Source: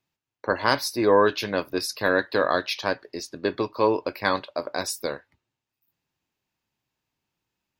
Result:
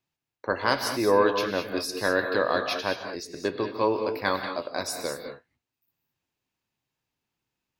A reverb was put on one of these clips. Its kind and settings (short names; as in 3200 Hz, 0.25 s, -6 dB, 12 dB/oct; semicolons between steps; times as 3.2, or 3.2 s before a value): non-linear reverb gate 0.24 s rising, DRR 5.5 dB; gain -3 dB